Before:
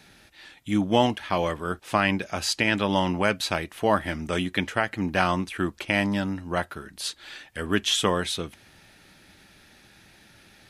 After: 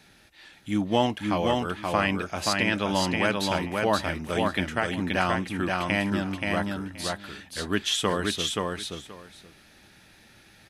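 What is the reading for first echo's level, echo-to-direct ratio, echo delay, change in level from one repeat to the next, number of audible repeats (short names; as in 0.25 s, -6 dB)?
-3.0 dB, -3.0 dB, 0.527 s, -16.0 dB, 2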